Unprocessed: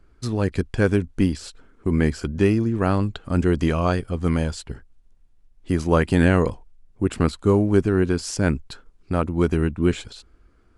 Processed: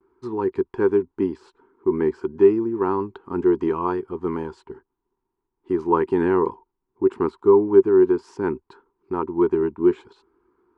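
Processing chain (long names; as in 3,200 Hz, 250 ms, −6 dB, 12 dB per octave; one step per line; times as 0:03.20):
noise gate with hold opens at −51 dBFS
pair of resonant band-passes 600 Hz, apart 1.3 octaves
level +9 dB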